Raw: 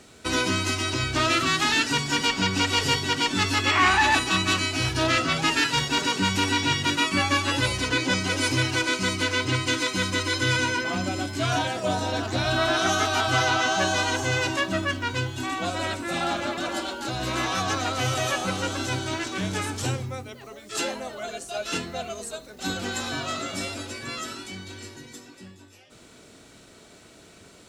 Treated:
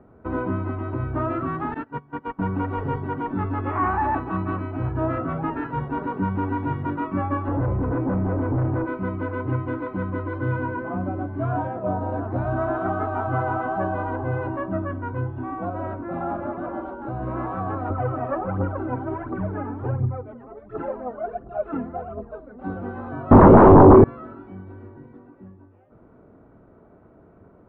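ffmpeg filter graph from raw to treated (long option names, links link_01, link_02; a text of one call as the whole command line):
ffmpeg -i in.wav -filter_complex "[0:a]asettb=1/sr,asplit=3[link_01][link_02][link_03];[link_01]atrim=end=1.744[link_04];[link_02]atrim=start=1.74:end=2.39,asetpts=PTS-STARTPTS,afade=type=in:duration=0.004:curve=qsin,afade=type=out:start_time=0.646:duration=0.004:curve=qsin,agate=range=-19dB:threshold=-24dB:ratio=16:release=100:detection=peak,lowshelf=frequency=420:gain=-4[link_05];[link_03]atrim=start=2.386[link_06];[link_04][link_05]acrossfade=duration=0.004:curve1=hsin:curve2=qsin[link_07];[link_07][link_06]acrossfade=duration=0.004:curve1=qsin:curve2=hsin,asettb=1/sr,asplit=3[link_08][link_09][link_10];[link_08]atrim=end=7.484[link_11];[link_09]atrim=start=7.48:end=8.86,asetpts=PTS-STARTPTS,afade=type=in:duration=0.004:curve=qsin,afade=type=out:start_time=1.376:duration=0.004:curve=qsin,tiltshelf=frequency=1300:gain=7.5,asoftclip=type=hard:threshold=-21.5dB[link_12];[link_10]atrim=start=8.856[link_13];[link_11][link_12]acrossfade=duration=0.004:curve1=hsin:curve2=qsin[link_14];[link_14][link_13]acrossfade=duration=0.004:curve1=qsin:curve2=hsin,asettb=1/sr,asplit=3[link_15][link_16][link_17];[link_15]atrim=end=17.904[link_18];[link_16]atrim=start=17.9:end=22.64,asetpts=PTS-STARTPTS,afade=type=in:duration=0.004:curve=qsin,afade=type=out:start_time=4.736:duration=0.004:curve=qsin,acrossover=split=2700[link_19][link_20];[link_20]acompressor=threshold=-43dB:ratio=4:attack=1:release=60[link_21];[link_19][link_21]amix=inputs=2:normalize=0,aphaser=in_gain=1:out_gain=1:delay=4.5:decay=0.64:speed=1.4:type=triangular[link_22];[link_17]atrim=start=22.636[link_23];[link_18][link_22]acrossfade=duration=0.004:curve1=hsin:curve2=qsin[link_24];[link_24][link_23]acrossfade=duration=0.004:curve1=qsin:curve2=hsin,asettb=1/sr,asplit=3[link_25][link_26][link_27];[link_25]atrim=end=23.314[link_28];[link_26]atrim=start=23.31:end=24.04,asetpts=PTS-STARTPTS,afade=type=in:duration=0.004:curve=qsin,afade=type=out:start_time=0.726:duration=0.004:curve=qsin,lowshelf=frequency=590:width_type=q:width=3:gain=13.5,aeval=exprs='0.501*sin(PI/2*5.62*val(0)/0.501)':channel_layout=same[link_29];[link_27]atrim=start=24.036[link_30];[link_28][link_29]acrossfade=duration=0.004:curve1=hsin:curve2=qsin[link_31];[link_31][link_30]acrossfade=duration=0.004:curve1=qsin:curve2=hsin,lowpass=frequency=1200:width=0.5412,lowpass=frequency=1200:width=1.3066,lowshelf=frequency=170:gain=4" out.wav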